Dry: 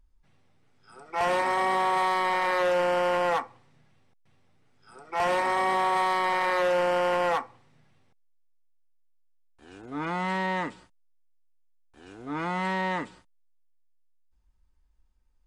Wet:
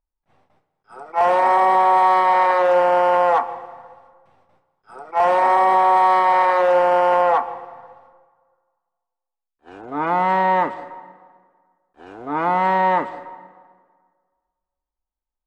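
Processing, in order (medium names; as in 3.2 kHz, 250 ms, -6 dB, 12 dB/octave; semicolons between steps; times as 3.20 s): gate with hold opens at -54 dBFS; peaking EQ 770 Hz +15 dB 2.1 oct; peak limiter -9 dBFS, peak gain reduction 4.5 dB; treble shelf 7.1 kHz -3.5 dB, from 7.22 s -11.5 dB; reverberation RT60 1.7 s, pre-delay 113 ms, DRR 15 dB; attacks held to a fixed rise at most 390 dB/s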